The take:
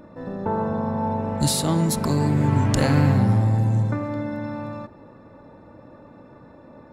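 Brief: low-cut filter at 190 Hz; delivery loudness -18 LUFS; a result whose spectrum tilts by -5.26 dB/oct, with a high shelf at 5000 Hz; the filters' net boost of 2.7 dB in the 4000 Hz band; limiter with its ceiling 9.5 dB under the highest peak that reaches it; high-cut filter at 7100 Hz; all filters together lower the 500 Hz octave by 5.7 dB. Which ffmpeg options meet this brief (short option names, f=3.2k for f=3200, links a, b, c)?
-af "highpass=190,lowpass=7.1k,equalizer=f=500:t=o:g=-7,equalizer=f=4k:t=o:g=5,highshelf=f=5k:g=-3,volume=10.5dB,alimiter=limit=-7dB:level=0:latency=1"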